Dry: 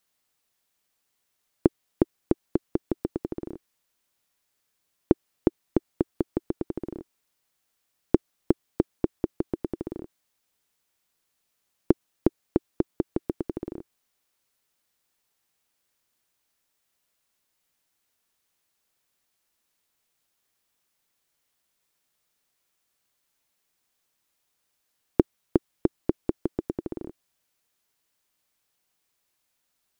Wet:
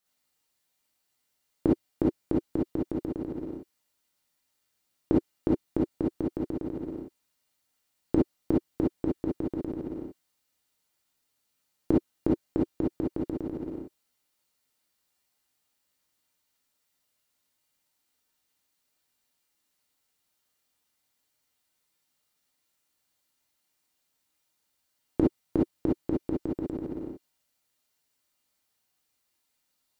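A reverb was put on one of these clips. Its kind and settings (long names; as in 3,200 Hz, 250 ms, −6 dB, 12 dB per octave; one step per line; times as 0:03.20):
reverb whose tail is shaped and stops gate 80 ms rising, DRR −5 dB
level −7.5 dB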